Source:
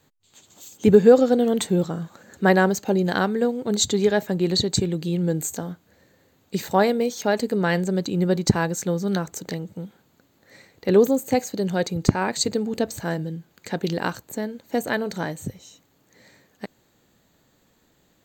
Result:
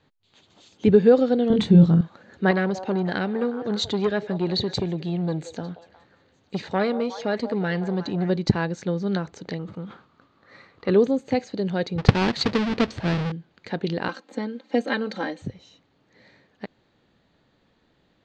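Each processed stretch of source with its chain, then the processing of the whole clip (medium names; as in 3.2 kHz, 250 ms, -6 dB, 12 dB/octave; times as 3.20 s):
1.50–2.01 s: tone controls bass +14 dB, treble +1 dB + doubling 24 ms -4.5 dB
2.51–8.30 s: repeats whose band climbs or falls 180 ms, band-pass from 650 Hz, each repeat 0.7 oct, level -11.5 dB + transformer saturation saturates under 710 Hz
9.59–10.94 s: peaking EQ 1.2 kHz +15 dB 0.4 oct + decay stretcher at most 120 dB/s
11.98–13.32 s: square wave that keeps the level + tape noise reduction on one side only decoder only
14.08–15.42 s: high-pass 220 Hz 24 dB/octave + comb 3.8 ms, depth 96%
whole clip: low-pass 4.5 kHz 24 dB/octave; dynamic bell 860 Hz, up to -3 dB, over -27 dBFS, Q 0.79; trim -1 dB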